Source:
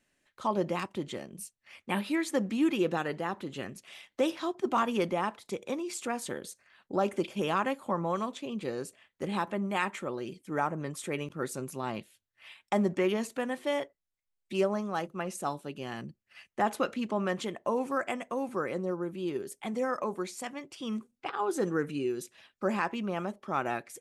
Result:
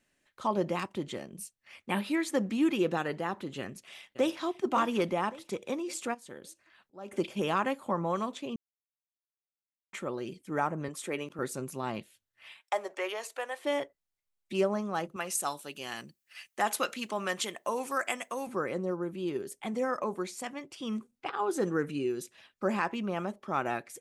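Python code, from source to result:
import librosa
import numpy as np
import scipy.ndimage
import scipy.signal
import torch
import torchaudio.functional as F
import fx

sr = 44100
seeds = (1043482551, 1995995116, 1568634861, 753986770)

y = fx.echo_throw(x, sr, start_s=3.59, length_s=0.86, ms=560, feedback_pct=45, wet_db=-13.5)
y = fx.auto_swell(y, sr, attack_ms=760.0, at=(6.13, 7.11), fade=0.02)
y = fx.highpass(y, sr, hz=220.0, slope=12, at=(10.88, 11.39))
y = fx.highpass(y, sr, hz=520.0, slope=24, at=(12.6, 13.65))
y = fx.tilt_eq(y, sr, slope=3.5, at=(15.16, 18.47))
y = fx.edit(y, sr, fx.silence(start_s=8.56, length_s=1.37), tone=tone)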